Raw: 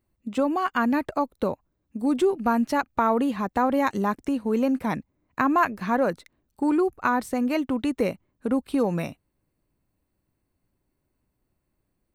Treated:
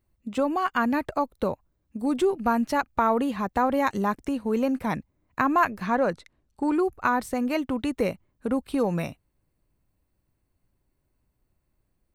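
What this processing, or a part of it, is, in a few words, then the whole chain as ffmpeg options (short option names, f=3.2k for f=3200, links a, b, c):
low shelf boost with a cut just above: -filter_complex "[0:a]asettb=1/sr,asplit=3[a][b][c];[a]atrim=end=5.874[d];[b]atrim=start=5.87:end=6.75,asetpts=PTS-STARTPTS,afade=t=in:d=0.004:c=qsin,afade=t=out:st=0.876:d=0.004:c=qsin,lowpass=8.5k[e];[c]atrim=start=6.746[f];[d][e]acrossfade=d=0.004:c1=hsin:c2=qsin[g];[g][f]acrossfade=d=0.004:c1=qsin:c2=hsin,lowshelf=f=87:g=6,equalizer=f=270:t=o:w=1.1:g=-3"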